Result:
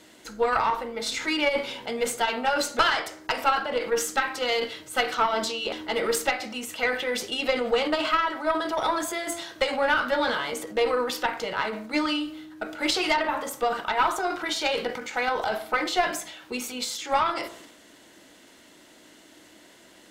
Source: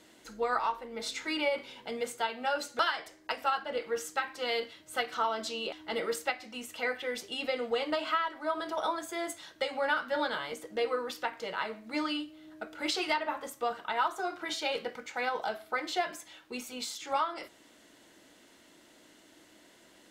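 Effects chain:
transient designer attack +3 dB, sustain +7 dB
hum removal 56.54 Hz, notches 27
tube saturation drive 18 dB, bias 0.55
level +8.5 dB

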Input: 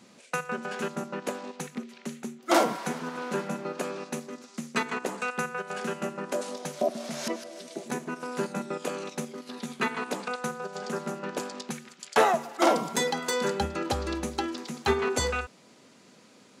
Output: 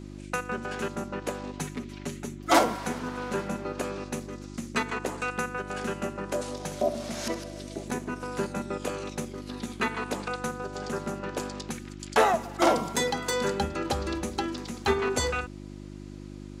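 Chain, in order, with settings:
0:01.53–0:02.59: comb filter 7 ms, depth 92%
0:06.53–0:07.52: flutter between parallel walls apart 11.3 metres, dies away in 0.37 s
hum with harmonics 50 Hz, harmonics 7, −42 dBFS −1 dB per octave

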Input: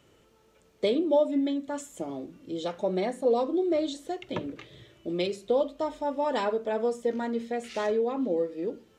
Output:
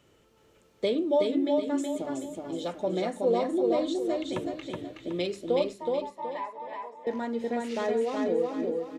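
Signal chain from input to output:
0:05.73–0:07.07: pair of resonant band-passes 1,400 Hz, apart 1 octave
repeating echo 372 ms, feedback 37%, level −3 dB
level −1.5 dB

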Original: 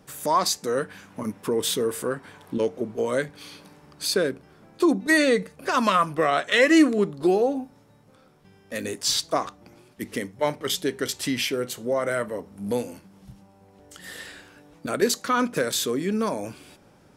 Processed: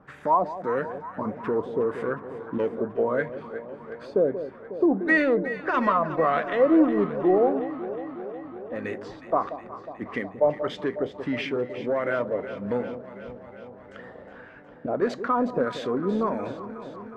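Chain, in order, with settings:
dynamic equaliser 1,700 Hz, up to −5 dB, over −37 dBFS, Q 1.1
in parallel at −6 dB: hard clipping −22 dBFS, distortion −8 dB
on the sum: auto-filter low-pass sine 1.6 Hz 640–2,000 Hz
delay that swaps between a low-pass and a high-pass 182 ms, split 870 Hz, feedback 83%, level −11 dB
level −5 dB

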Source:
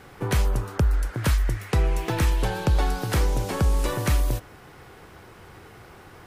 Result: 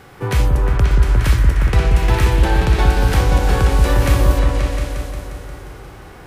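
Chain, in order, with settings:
echo whose low-pass opens from repeat to repeat 177 ms, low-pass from 400 Hz, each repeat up 2 octaves, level 0 dB
dynamic equaliser 2,400 Hz, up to +4 dB, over −43 dBFS, Q 0.87
harmonic and percussive parts rebalanced harmonic +8 dB
level −1 dB

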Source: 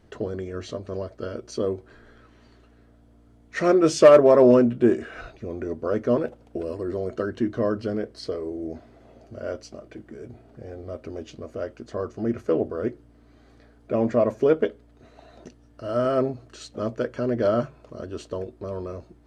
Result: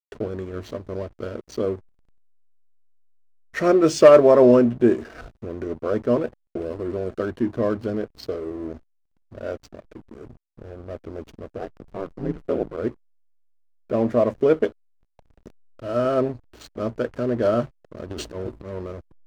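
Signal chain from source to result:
0:11.58–0:12.76: ring modulation 130 Hz → 50 Hz
0:18.10–0:18.74: transient designer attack −10 dB, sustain +10 dB
slack as between gear wheels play −35 dBFS
level +1.5 dB

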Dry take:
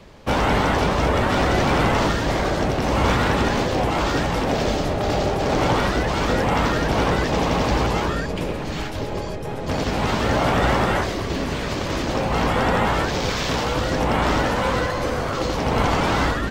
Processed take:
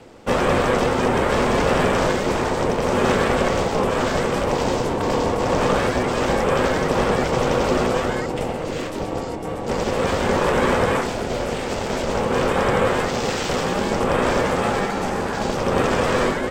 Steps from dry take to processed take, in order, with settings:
ring modulation 310 Hz
thirty-one-band graphic EQ 500 Hz +7 dB, 4,000 Hz −3 dB, 8,000 Hz +7 dB
level +2 dB

